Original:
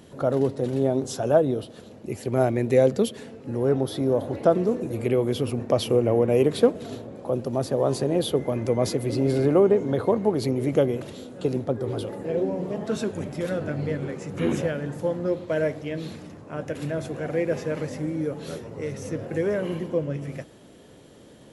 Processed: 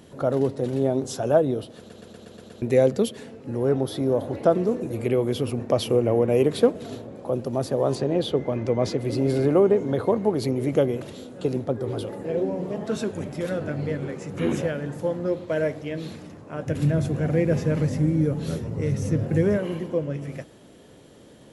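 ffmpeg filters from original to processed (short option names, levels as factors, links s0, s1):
-filter_complex "[0:a]asettb=1/sr,asplit=3[s0][s1][s2];[s0]atrim=end=7.954[s3];[s1]atrim=start=7.95:end=9.05,asetpts=PTS-STARTPTS,afade=t=in:d=0.004:c=qsin,afade=t=out:st=1.096:d=0.004:c=qsin,lowpass=5600[s4];[s2]atrim=start=9.046[s5];[s3][s4]acrossfade=d=0.004:c1=hsin:c2=qsin[s6];[s6][s5]acrossfade=d=0.004:c1=qsin:c2=hsin,asettb=1/sr,asplit=3[s7][s8][s9];[s7]atrim=end=16.674[s10];[s8]atrim=start=16.67:end=19.58,asetpts=PTS-STARTPTS,afade=t=in:d=0.004:c=qsin,afade=t=out:st=2.906:d=0.004:c=qsin,bass=f=250:g=13,treble=f=4000:g=2[s11];[s9]atrim=start=19.576[s12];[s10][s11]acrossfade=d=0.004:c1=hsin:c2=qsin[s13];[s13][s12]acrossfade=d=0.004:c1=qsin:c2=hsin,asplit=8[s14][s15][s16][s17][s18][s19][s20][s21];[s14]atrim=end=1.902[s22];[s15]atrim=start=1.778:end=1.902[s23];[s16]atrim=start=1.778:end=1.902[s24];[s17]atrim=start=1.778:end=1.902[s25];[s18]atrim=start=1.778:end=1.902[s26];[s19]atrim=start=1.778:end=1.902[s27];[s20]atrim=start=1.778:end=1.902[s28];[s21]atrim=start=2.618[s29];[s22][s23]acrossfade=d=0.004:c1=hsin:c2=hsin[s30];[s30][s24]acrossfade=d=0.004:c1=hsin:c2=hsin[s31];[s31][s25]acrossfade=d=0.004:c1=hsin:c2=hsin[s32];[s32][s26]acrossfade=d=0.004:c1=hsin:c2=hsin[s33];[s33][s27]acrossfade=d=0.004:c1=hsin:c2=hsin[s34];[s34][s28]acrossfade=d=0.004:c1=hsin:c2=hsin[s35];[s35][s29]acrossfade=d=0.004:c1=hsin:c2=hsin"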